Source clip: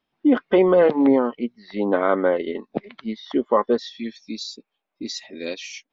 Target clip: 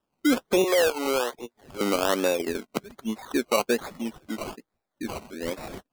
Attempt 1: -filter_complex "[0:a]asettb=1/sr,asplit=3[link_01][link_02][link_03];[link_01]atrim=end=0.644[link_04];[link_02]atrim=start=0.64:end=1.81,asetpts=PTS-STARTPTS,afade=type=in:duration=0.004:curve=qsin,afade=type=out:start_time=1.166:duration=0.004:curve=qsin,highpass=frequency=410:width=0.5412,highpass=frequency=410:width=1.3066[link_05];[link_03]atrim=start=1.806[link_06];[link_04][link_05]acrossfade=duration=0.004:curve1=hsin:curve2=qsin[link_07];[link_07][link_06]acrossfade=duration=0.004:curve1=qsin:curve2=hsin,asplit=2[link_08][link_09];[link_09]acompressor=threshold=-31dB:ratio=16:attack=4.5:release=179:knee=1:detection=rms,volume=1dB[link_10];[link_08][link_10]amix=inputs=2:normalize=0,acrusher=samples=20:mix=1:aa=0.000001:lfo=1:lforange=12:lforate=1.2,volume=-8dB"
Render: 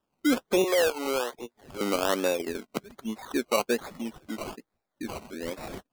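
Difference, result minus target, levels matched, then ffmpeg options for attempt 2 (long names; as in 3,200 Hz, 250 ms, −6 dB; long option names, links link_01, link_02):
downward compressor: peak gain reduction +11 dB
-filter_complex "[0:a]asettb=1/sr,asplit=3[link_01][link_02][link_03];[link_01]atrim=end=0.644[link_04];[link_02]atrim=start=0.64:end=1.81,asetpts=PTS-STARTPTS,afade=type=in:duration=0.004:curve=qsin,afade=type=out:start_time=1.166:duration=0.004:curve=qsin,highpass=frequency=410:width=0.5412,highpass=frequency=410:width=1.3066[link_05];[link_03]atrim=start=1.806[link_06];[link_04][link_05]acrossfade=duration=0.004:curve1=hsin:curve2=qsin[link_07];[link_07][link_06]acrossfade=duration=0.004:curve1=qsin:curve2=hsin,asplit=2[link_08][link_09];[link_09]acompressor=threshold=-19.5dB:ratio=16:attack=4.5:release=179:knee=1:detection=rms,volume=1dB[link_10];[link_08][link_10]amix=inputs=2:normalize=0,acrusher=samples=20:mix=1:aa=0.000001:lfo=1:lforange=12:lforate=1.2,volume=-8dB"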